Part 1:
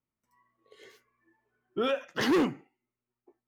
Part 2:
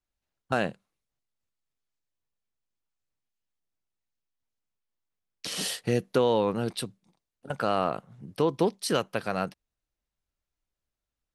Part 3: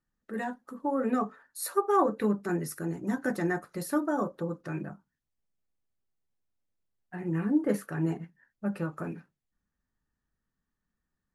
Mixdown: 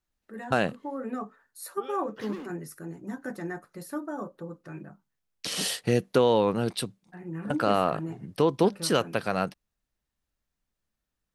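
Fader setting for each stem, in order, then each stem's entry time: −15.5, +2.0, −6.0 decibels; 0.00, 0.00, 0.00 seconds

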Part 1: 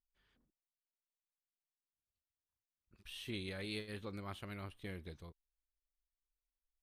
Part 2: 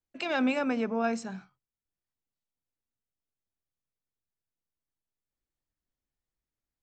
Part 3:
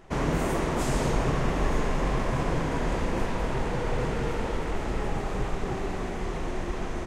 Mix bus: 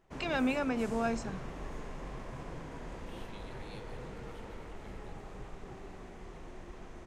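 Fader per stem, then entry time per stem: −9.5, −3.5, −16.5 decibels; 0.00, 0.00, 0.00 seconds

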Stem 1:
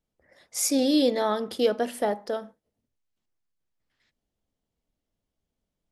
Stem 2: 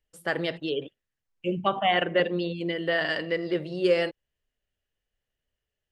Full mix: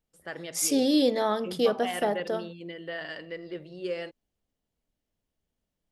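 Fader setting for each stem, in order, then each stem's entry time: −1.0, −10.5 decibels; 0.00, 0.00 seconds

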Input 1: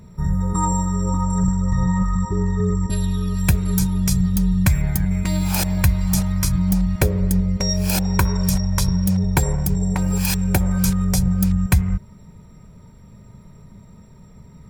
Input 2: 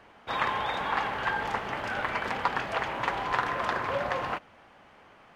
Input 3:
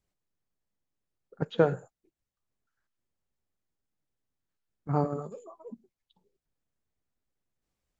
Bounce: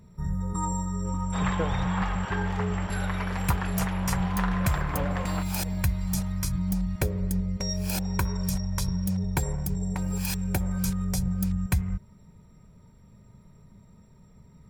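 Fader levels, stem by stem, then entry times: −9.0, −4.5, −8.5 decibels; 0.00, 1.05, 0.00 seconds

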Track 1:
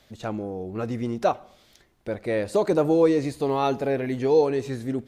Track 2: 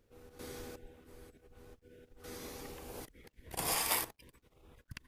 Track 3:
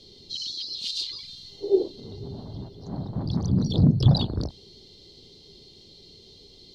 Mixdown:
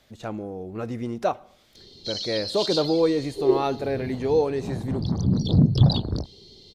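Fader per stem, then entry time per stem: −2.0 dB, muted, +1.0 dB; 0.00 s, muted, 1.75 s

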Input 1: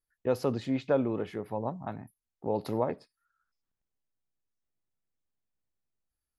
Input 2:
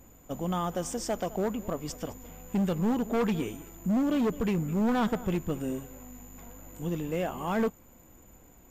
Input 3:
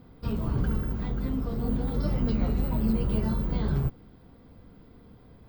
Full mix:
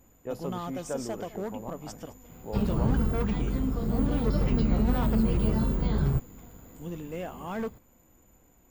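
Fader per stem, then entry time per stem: −7.5, −5.5, +1.0 decibels; 0.00, 0.00, 2.30 seconds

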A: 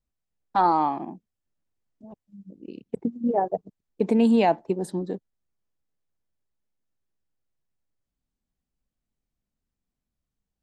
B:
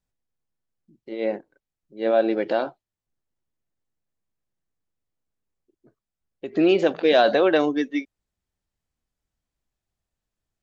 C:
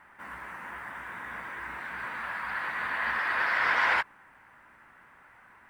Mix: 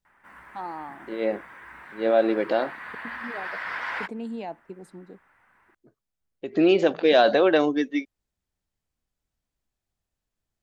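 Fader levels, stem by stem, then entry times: −15.0, −0.5, −6.5 decibels; 0.00, 0.00, 0.05 seconds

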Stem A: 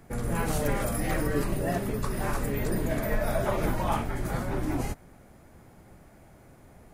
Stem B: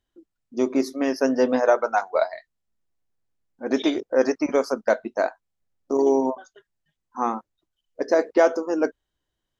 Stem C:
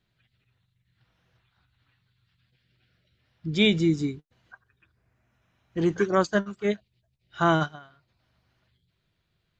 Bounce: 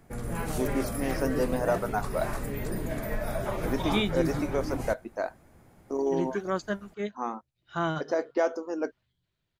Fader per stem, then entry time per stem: −4.0, −8.5, −7.5 decibels; 0.00, 0.00, 0.35 seconds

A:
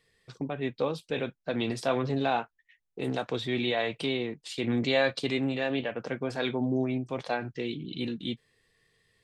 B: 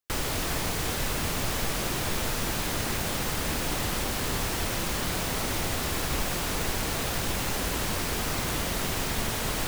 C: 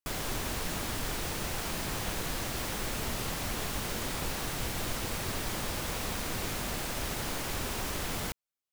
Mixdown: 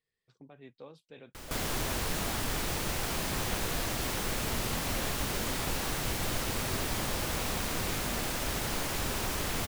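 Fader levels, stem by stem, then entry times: −19.5, −16.5, +1.5 decibels; 0.00, 1.25, 1.45 seconds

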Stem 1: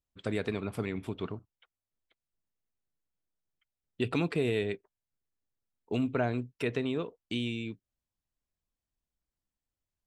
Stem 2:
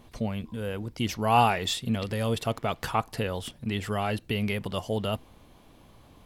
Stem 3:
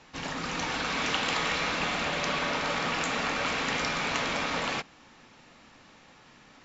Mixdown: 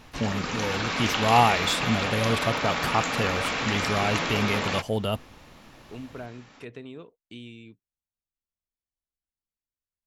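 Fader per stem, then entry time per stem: −9.5, +2.0, +1.5 decibels; 0.00, 0.00, 0.00 seconds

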